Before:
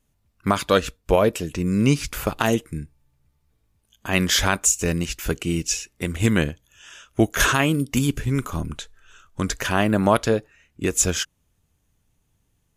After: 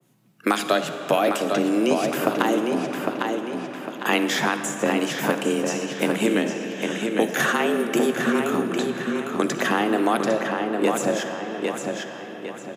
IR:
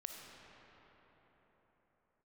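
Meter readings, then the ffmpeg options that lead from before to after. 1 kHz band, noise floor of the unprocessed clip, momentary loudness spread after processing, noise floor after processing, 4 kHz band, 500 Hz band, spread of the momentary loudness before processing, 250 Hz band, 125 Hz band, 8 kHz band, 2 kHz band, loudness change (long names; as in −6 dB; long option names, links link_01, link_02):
+2.5 dB, −69 dBFS, 7 LU, −37 dBFS, −2.0 dB, +2.0 dB, 12 LU, +1.0 dB, −11.0 dB, −8.0 dB, +1.0 dB, −1.5 dB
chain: -filter_complex "[0:a]acrossover=split=81|2000[link_01][link_02][link_03];[link_01]acompressor=threshold=-45dB:ratio=4[link_04];[link_02]acompressor=threshold=-29dB:ratio=4[link_05];[link_03]acompressor=threshold=-35dB:ratio=4[link_06];[link_04][link_05][link_06]amix=inputs=3:normalize=0,afreqshift=110,bass=frequency=250:gain=-5,treble=frequency=4000:gain=-5,asplit=2[link_07][link_08];[link_08]adelay=804,lowpass=frequency=4600:poles=1,volume=-4.5dB,asplit=2[link_09][link_10];[link_10]adelay=804,lowpass=frequency=4600:poles=1,volume=0.4,asplit=2[link_11][link_12];[link_12]adelay=804,lowpass=frequency=4600:poles=1,volume=0.4,asplit=2[link_13][link_14];[link_14]adelay=804,lowpass=frequency=4600:poles=1,volume=0.4,asplit=2[link_15][link_16];[link_16]adelay=804,lowpass=frequency=4600:poles=1,volume=0.4[link_17];[link_07][link_09][link_11][link_13][link_15][link_17]amix=inputs=6:normalize=0,asplit=2[link_18][link_19];[1:a]atrim=start_sample=2205,highshelf=frequency=4800:gain=7.5[link_20];[link_19][link_20]afir=irnorm=-1:irlink=0,volume=4.5dB[link_21];[link_18][link_21]amix=inputs=2:normalize=0,adynamicequalizer=threshold=0.0126:dfrequency=1600:dqfactor=0.7:tfrequency=1600:tqfactor=0.7:attack=5:release=100:ratio=0.375:range=3.5:mode=cutabove:tftype=highshelf,volume=3.5dB"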